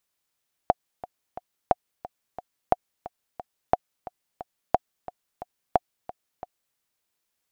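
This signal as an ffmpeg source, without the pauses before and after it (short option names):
-f lavfi -i "aevalsrc='pow(10,(-4.5-17.5*gte(mod(t,3*60/178),60/178))/20)*sin(2*PI*725*mod(t,60/178))*exp(-6.91*mod(t,60/178)/0.03)':d=6.06:s=44100"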